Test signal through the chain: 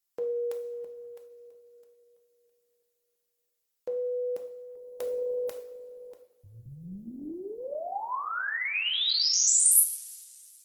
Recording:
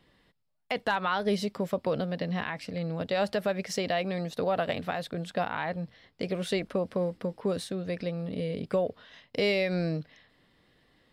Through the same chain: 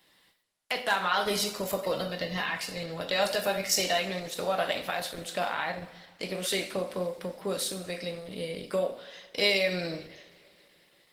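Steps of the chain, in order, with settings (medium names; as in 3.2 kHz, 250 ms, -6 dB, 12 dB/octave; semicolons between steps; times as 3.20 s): RIAA curve recording; two-slope reverb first 0.58 s, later 2.9 s, from -21 dB, DRR 2.5 dB; Opus 16 kbps 48 kHz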